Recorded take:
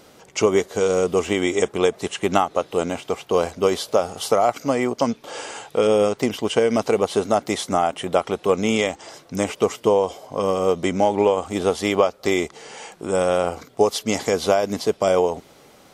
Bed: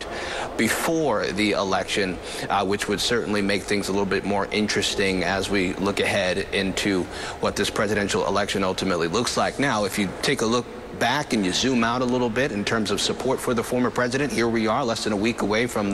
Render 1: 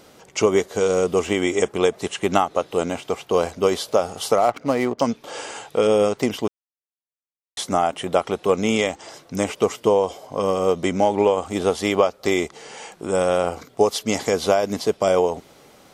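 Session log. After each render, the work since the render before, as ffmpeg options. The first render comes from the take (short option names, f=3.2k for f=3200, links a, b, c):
-filter_complex "[0:a]asettb=1/sr,asplit=3[a][b][c];[a]atrim=end=1.314[d];[b]atrim=start=1.31:end=1.75,asetpts=PTS-STARTPTS,afade=t=in:d=0.004:c=qsin,afade=t=out:st=0.436:d=0.004:c=qsin,bandreject=f=3.7k:w=12[e];[c]atrim=start=1.746[f];[d][e]acrossfade=d=0.004:c1=hsin:c2=qsin[g];[g][f]acrossfade=d=0.004:c1=qsin:c2=hsin,asettb=1/sr,asplit=3[h][i][j];[h]atrim=end=4.384[k];[i]atrim=start=4.38:end=5,asetpts=PTS-STARTPTS,afade=t=in:d=0.004:c=qsin,afade=t=out:st=0.616:d=0.004:c=qsin,adynamicsmooth=sensitivity=7:basefreq=1.1k[l];[j]atrim=start=4.996[m];[k][l]acrossfade=d=0.004:c1=hsin:c2=qsin[n];[n][m]acrossfade=d=0.004:c1=qsin:c2=hsin,asplit=3[o][p][q];[o]atrim=end=6.48,asetpts=PTS-STARTPTS,afade=t=out:st=6.476:d=0.004:c=hsin[r];[p]atrim=start=6.48:end=7.57,asetpts=PTS-STARTPTS,volume=0[s];[q]atrim=start=7.57,asetpts=PTS-STARTPTS,afade=t=in:d=0.004:c=hsin[t];[r][s][t]concat=n=3:v=0:a=1"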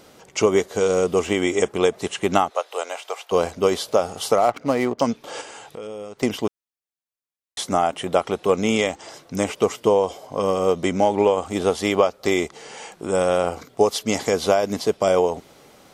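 -filter_complex "[0:a]asplit=3[a][b][c];[a]afade=t=out:st=2.49:d=0.02[d];[b]highpass=f=550:w=0.5412,highpass=f=550:w=1.3066,afade=t=in:st=2.49:d=0.02,afade=t=out:st=3.31:d=0.02[e];[c]afade=t=in:st=3.31:d=0.02[f];[d][e][f]amix=inputs=3:normalize=0,asettb=1/sr,asplit=3[g][h][i];[g]atrim=end=5.414[j];[h]atrim=start=5.41:end=6.23,asetpts=PTS-STARTPTS,afade=t=in:d=0.004:c=qsin,afade=t=out:st=0.816:d=0.004:c=qsin,acompressor=threshold=-37dB:ratio=3:attack=3.2:release=140:knee=1:detection=peak[k];[i]atrim=start=6.226[l];[j][k]acrossfade=d=0.004:c1=hsin:c2=qsin[m];[m][l]acrossfade=d=0.004:c1=qsin:c2=hsin"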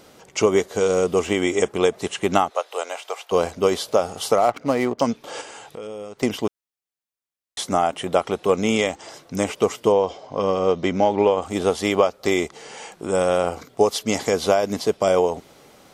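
-filter_complex "[0:a]asettb=1/sr,asplit=3[a][b][c];[a]atrim=end=9.924[d];[b]atrim=start=9.92:end=11.42,asetpts=PTS-STARTPTS,afade=t=in:d=0.004:c=qsin,afade=t=out:st=1.496:d=0.004:c=qsin,lowpass=f=5.8k:w=0.5412,lowpass=f=5.8k:w=1.3066[e];[c]atrim=start=11.416[f];[d][e]acrossfade=d=0.004:c1=hsin:c2=qsin[g];[g][f]acrossfade=d=0.004:c1=qsin:c2=hsin"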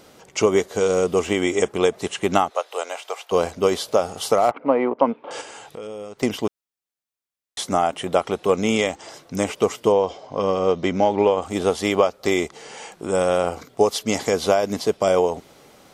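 -filter_complex "[0:a]asettb=1/sr,asplit=3[a][b][c];[a]atrim=end=4.514[d];[b]atrim=start=4.51:end=5.31,asetpts=PTS-STARTPTS,afade=t=in:d=0.004:c=qsin,afade=t=out:st=0.796:d=0.004:c=qsin,highpass=250,equalizer=f=270:t=q:w=4:g=3,equalizer=f=510:t=q:w=4:g=5,equalizer=f=940:t=q:w=4:g=7,equalizer=f=1.8k:t=q:w=4:g=-5,lowpass=f=2.5k:w=0.5412,lowpass=f=2.5k:w=1.3066[e];[c]atrim=start=5.306[f];[d][e]acrossfade=d=0.004:c1=hsin:c2=qsin[g];[g][f]acrossfade=d=0.004:c1=qsin:c2=hsin"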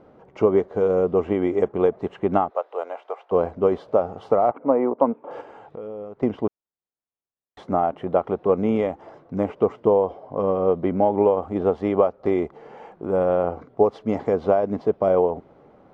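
-af "lowpass=1k"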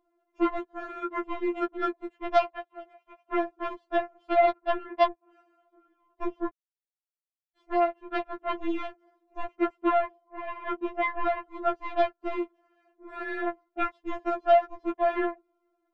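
-af "aeval=exprs='0.708*(cos(1*acos(clip(val(0)/0.708,-1,1)))-cos(1*PI/2))+0.0891*(cos(7*acos(clip(val(0)/0.708,-1,1)))-cos(7*PI/2))':c=same,afftfilt=real='re*4*eq(mod(b,16),0)':imag='im*4*eq(mod(b,16),0)':win_size=2048:overlap=0.75"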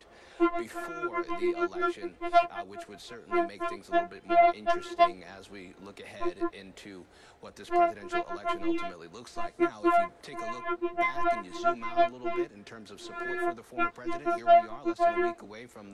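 -filter_complex "[1:a]volume=-23.5dB[a];[0:a][a]amix=inputs=2:normalize=0"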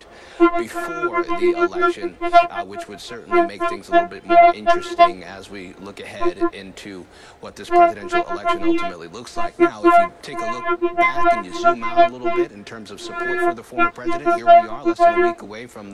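-af "volume=11.5dB,alimiter=limit=-2dB:level=0:latency=1"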